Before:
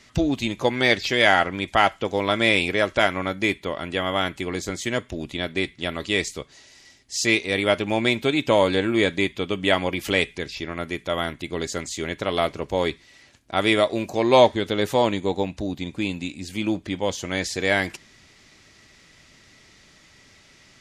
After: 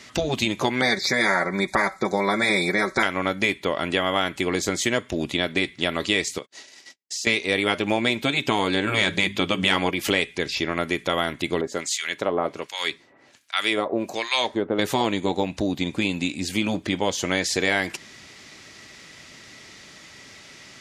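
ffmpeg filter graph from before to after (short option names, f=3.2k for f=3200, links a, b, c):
-filter_complex "[0:a]asettb=1/sr,asplit=3[a][b][c];[a]atrim=end=0.814[d];[b]atrim=start=0.81:end=3.03,asetpts=PTS-STARTPTS,afade=t=in:d=0.004:c=qsin,afade=t=out:st=2.216:d=0.004:c=qsin,asuperstop=centerf=2900:order=12:qfactor=2.4,aecho=1:1:5.3:0.67,atrim=end_sample=97902[e];[c]atrim=start=3.026[f];[d][e]acrossfade=d=0.004:c1=hsin:c2=qsin[g];[g][f]acrossfade=d=0.004:c1=qsin:c2=hsin,asettb=1/sr,asplit=3[h][i][j];[h]atrim=end=6.384[k];[i]atrim=start=6.38:end=7.27,asetpts=PTS-STARTPTS,afade=t=in:d=0.004:c=qsin,afade=t=out:st=0.886:d=0.004:c=qsin,highpass=190,acompressor=threshold=-35dB:ratio=10:attack=3.2:release=140:knee=1:detection=peak,agate=range=-45dB:threshold=-51dB:ratio=16:release=100:detection=peak[l];[j]atrim=start=7.266[m];[k][l]acrossfade=d=0.004:c1=hsin:c2=qsin[n];[n][m]acrossfade=d=0.004:c1=qsin:c2=hsin,asettb=1/sr,asplit=3[o][p][q];[o]atrim=end=8.874[r];[p]atrim=start=8.87:end=9.91,asetpts=PTS-STARTPTS,afade=t=in:d=0.004:c=qsin,afade=t=out:st=1.036:d=0.004:c=qsin,bandreject=f=50:t=h:w=6,bandreject=f=100:t=h:w=6,bandreject=f=150:t=h:w=6,bandreject=f=200:t=h:w=6,bandreject=f=250:t=h:w=6,acontrast=32[s];[q]atrim=start=9.906[t];[r][s]acrossfade=d=0.004:c1=hsin:c2=qsin[u];[u][t]acrossfade=d=0.004:c1=qsin:c2=hsin,asettb=1/sr,asplit=3[v][w][x];[v]atrim=end=11.614[y];[w]atrim=start=11.61:end=14.79,asetpts=PTS-STARTPTS,afade=t=in:d=0.004:c=qsin,afade=t=out:st=3.176:d=0.004:c=qsin,highpass=f=210:p=1,acrossover=split=1300[z][aa];[z]aeval=exprs='val(0)*(1-1/2+1/2*cos(2*PI*1.3*n/s))':c=same[ab];[aa]aeval=exprs='val(0)*(1-1/2-1/2*cos(2*PI*1.3*n/s))':c=same[ac];[ab][ac]amix=inputs=2:normalize=0[ad];[x]atrim=start=14.786[ae];[y][ad]acrossfade=d=0.004:c1=hsin:c2=qsin[af];[af][ae]acrossfade=d=0.004:c1=qsin:c2=hsin,afftfilt=real='re*lt(hypot(re,im),0.631)':imag='im*lt(hypot(re,im),0.631)':win_size=1024:overlap=0.75,highpass=f=160:p=1,acompressor=threshold=-28dB:ratio=3,volume=8dB"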